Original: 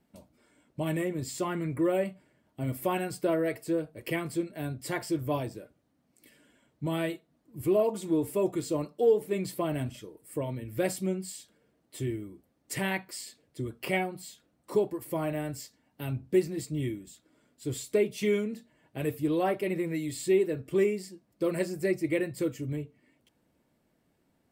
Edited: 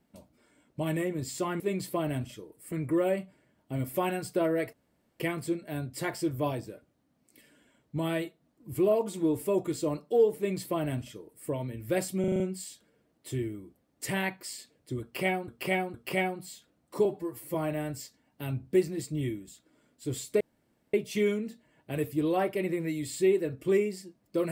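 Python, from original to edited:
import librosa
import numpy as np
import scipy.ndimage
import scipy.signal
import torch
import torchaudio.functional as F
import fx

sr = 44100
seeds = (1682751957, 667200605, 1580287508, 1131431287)

y = fx.edit(x, sr, fx.room_tone_fill(start_s=3.61, length_s=0.47),
    fx.duplicate(start_s=9.25, length_s=1.12, to_s=1.6),
    fx.stutter(start_s=11.08, slice_s=0.04, count=6),
    fx.repeat(start_s=13.7, length_s=0.46, count=3),
    fx.stretch_span(start_s=14.81, length_s=0.33, factor=1.5),
    fx.insert_room_tone(at_s=18.0, length_s=0.53), tone=tone)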